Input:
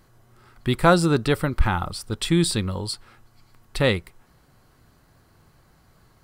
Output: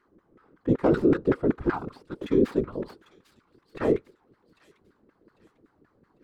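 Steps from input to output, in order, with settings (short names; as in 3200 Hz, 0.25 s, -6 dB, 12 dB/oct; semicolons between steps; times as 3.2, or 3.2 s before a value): tracing distortion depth 0.28 ms; resonant low shelf 480 Hz +8 dB, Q 3; notch 370 Hz, Q 12; LFO band-pass saw down 5.3 Hz 290–1700 Hz; whisperiser; limiter -11.5 dBFS, peak gain reduction 8.5 dB; on a send: thin delay 0.798 s, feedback 36%, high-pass 3600 Hz, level -11.5 dB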